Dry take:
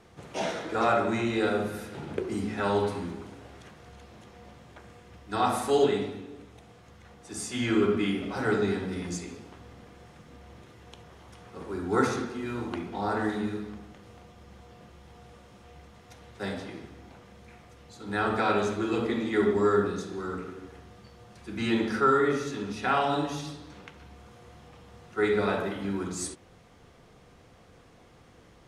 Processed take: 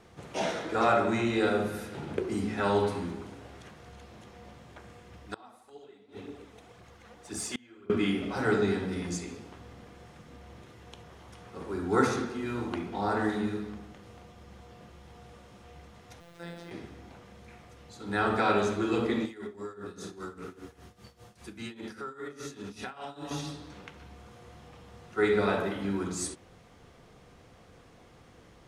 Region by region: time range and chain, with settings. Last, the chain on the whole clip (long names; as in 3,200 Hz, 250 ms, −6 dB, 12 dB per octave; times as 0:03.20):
0:05.24–0:07.90: phase shifter 1.9 Hz, delay 4.8 ms, feedback 46% + bass and treble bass −4 dB, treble −1 dB + gate with flip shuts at −22 dBFS, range −28 dB
0:16.20–0:16.71: downward compressor 2 to 1, threshold −41 dBFS + phases set to zero 171 Hz + bit-depth reduction 12 bits, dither triangular
0:19.25–0:23.31: high-shelf EQ 6,300 Hz +10.5 dB + downward compressor 20 to 1, threshold −33 dBFS + amplitude tremolo 5 Hz, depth 82%
whole clip: no processing